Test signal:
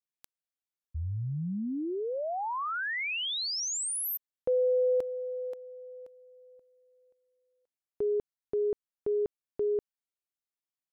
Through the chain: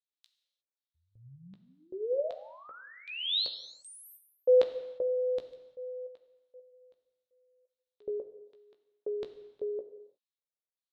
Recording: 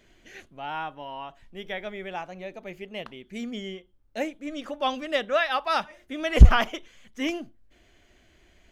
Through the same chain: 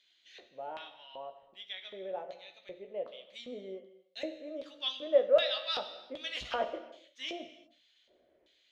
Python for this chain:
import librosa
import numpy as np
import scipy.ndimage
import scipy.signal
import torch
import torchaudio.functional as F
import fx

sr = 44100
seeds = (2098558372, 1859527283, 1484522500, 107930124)

y = fx.filter_lfo_bandpass(x, sr, shape='square', hz=1.3, low_hz=520.0, high_hz=3800.0, q=4.9)
y = fx.doubler(y, sr, ms=16.0, db=-8.5)
y = fx.rev_gated(y, sr, seeds[0], gate_ms=380, shape='falling', drr_db=8.0)
y = F.gain(torch.from_numpy(y), 4.0).numpy()